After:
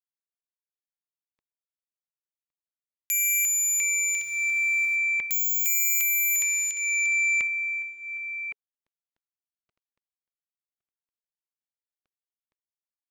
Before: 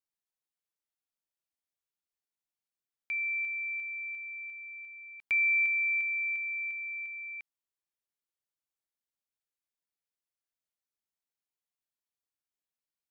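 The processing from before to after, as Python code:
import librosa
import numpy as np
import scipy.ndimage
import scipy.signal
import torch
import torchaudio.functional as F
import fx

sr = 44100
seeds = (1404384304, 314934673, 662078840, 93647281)

y = fx.law_mismatch(x, sr, coded='mu')
y = scipy.signal.sosfilt(scipy.signal.butter(2, 2200.0, 'lowpass', fs=sr, output='sos'), y)
y = y + 10.0 ** (-16.0 / 20.0) * np.pad(y, (int(1113 * sr / 1000.0), 0))[:len(y)]
y = fx.fold_sine(y, sr, drive_db=17, ceiling_db=-25.0)
y = fx.quant_dither(y, sr, seeds[0], bits=10, dither='triangular', at=(4.07, 4.95), fade=0.02)
y = fx.notch_cascade(y, sr, direction='falling', hz=0.81)
y = y * librosa.db_to_amplitude(4.5)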